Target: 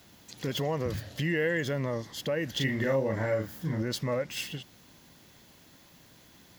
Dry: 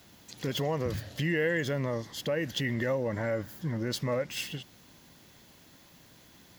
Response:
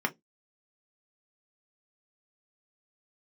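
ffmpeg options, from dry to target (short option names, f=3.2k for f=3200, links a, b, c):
-filter_complex "[0:a]asettb=1/sr,asplit=3[a][b][c];[a]atrim=end=2.514[d];[b]atrim=start=2.51:end=3.82,asetpts=PTS-STARTPTS,afade=t=in:d=0.004:c=qsin,afade=t=out:st=1.306:d=0.004:c=qsin,asplit=2[e][f];[f]adelay=37,volume=-3dB[g];[e][g]amix=inputs=2:normalize=0,atrim=end_sample=57771[h];[c]atrim=start=3.816[i];[d][h]acrossfade=d=0.004:c1=hsin:c2=qsin[j];[j][i]acrossfade=d=0.004:c1=qsin:c2=hsin"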